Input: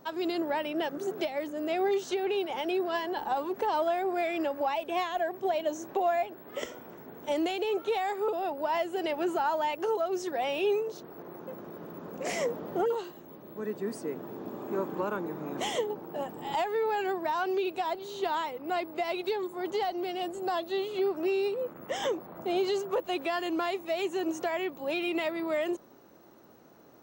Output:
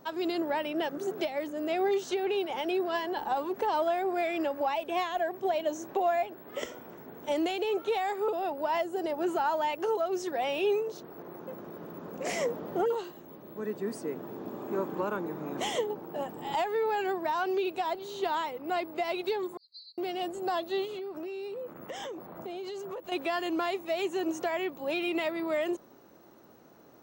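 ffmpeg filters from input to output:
ffmpeg -i in.wav -filter_complex "[0:a]asettb=1/sr,asplit=3[link_01][link_02][link_03];[link_01]atrim=end=8.814[link_04];[link_02]atrim=start=8.81:end=9.24,asetpts=PTS-STARTPTS,afade=type=in:duration=0.004:curve=qsin,afade=type=out:start_time=0.426:duration=0.004:curve=qsin,equalizer=frequency=2600:width_type=o:width=1.2:gain=-10.5[link_05];[link_03]atrim=start=9.236[link_06];[link_04][link_05]acrossfade=duration=0.004:curve1=hsin:curve2=qsin[link_07];[link_07][link_06]acrossfade=duration=0.004:curve1=qsin:curve2=hsin,asettb=1/sr,asplit=3[link_08][link_09][link_10];[link_08]atrim=end=19.574[link_11];[link_09]atrim=start=19.57:end=19.98,asetpts=PTS-STARTPTS,afade=type=in:duration=0.004:curve=qsin,afade=type=out:start_time=0.406:duration=0.004:curve=qsin,asuperpass=centerf=4400:order=20:qfactor=4.3[link_12];[link_10]atrim=start=19.976[link_13];[link_11][link_12]acrossfade=duration=0.004:curve1=hsin:curve2=qsin[link_14];[link_14][link_13]acrossfade=duration=0.004:curve1=qsin:curve2=hsin,asettb=1/sr,asplit=3[link_15][link_16][link_17];[link_15]atrim=end=20.854[link_18];[link_16]atrim=start=20.85:end=23.12,asetpts=PTS-STARTPTS,afade=type=in:duration=0.004:curve=qsin,afade=type=out:start_time=2.266:duration=0.004:curve=qsin,acompressor=threshold=-35dB:ratio=12:attack=3.2:release=140:knee=1:detection=peak[link_19];[link_17]atrim=start=23.116[link_20];[link_18][link_19]acrossfade=duration=0.004:curve1=hsin:curve2=qsin[link_21];[link_21][link_20]acrossfade=duration=0.004:curve1=qsin:curve2=hsin" out.wav

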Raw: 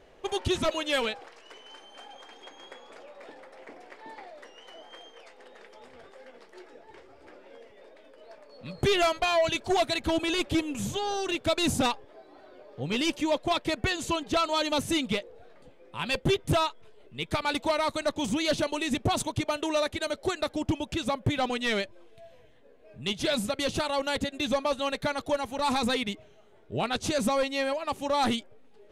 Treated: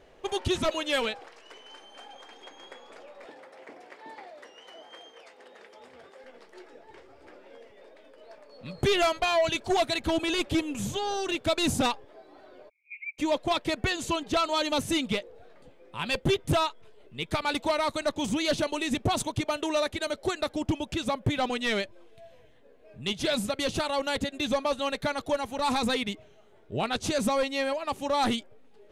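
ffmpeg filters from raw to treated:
ffmpeg -i in.wav -filter_complex "[0:a]asettb=1/sr,asplit=3[link_01][link_02][link_03];[link_01]atrim=end=3.254[link_04];[link_02]atrim=start=3.25:end=6.24,asetpts=PTS-STARTPTS,afade=type=in:duration=0.004:curve=qsin,afade=type=out:start_time=2.986:duration=0.004:curve=qsin,highpass=frequency=110:poles=1[link_05];[link_03]atrim=start=6.236[link_06];[link_04][link_05]acrossfade=duration=0.004:curve1=hsin:curve2=qsin[link_07];[link_07][link_06]acrossfade=duration=0.004:curve1=qsin:curve2=hsin,asplit=3[link_08][link_09][link_10];[link_08]afade=type=out:start_time=12.68:duration=0.02[link_11];[link_09]asuperpass=centerf=2300:order=8:qfactor=7.1,afade=type=in:start_time=12.68:duration=0.02,afade=type=out:start_time=13.18:duration=0.02[link_12];[link_10]afade=type=in:start_time=13.18:duration=0.02[link_13];[link_11][link_12][link_13]amix=inputs=3:normalize=0" out.wav

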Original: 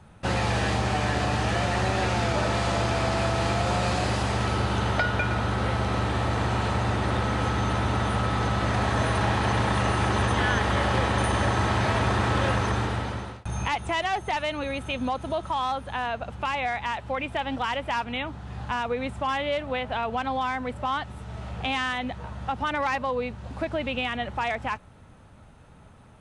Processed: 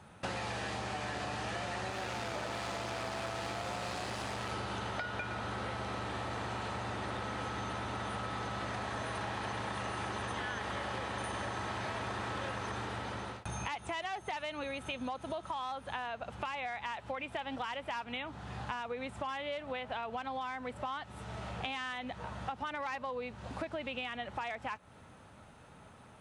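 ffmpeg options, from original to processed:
ffmpeg -i in.wav -filter_complex "[0:a]asettb=1/sr,asplit=3[link_01][link_02][link_03];[link_01]atrim=end=1.904[link_04];[link_02]atrim=start=1.9:end=4.52,asetpts=PTS-STARTPTS,afade=type=in:duration=0.004:curve=qsin,afade=type=out:start_time=2.616:duration=0.004:curve=qsin,aeval=exprs='clip(val(0),-1,0.0398)':channel_layout=same[link_05];[link_03]atrim=start=4.516[link_06];[link_04][link_05]acrossfade=duration=0.004:curve1=hsin:curve2=qsin[link_07];[link_07][link_06]acrossfade=duration=0.004:curve1=qsin:curve2=hsin,highpass=frequency=110:poles=1,lowshelf=frequency=360:gain=-4.5,acompressor=threshold=-36dB:ratio=6" out.wav

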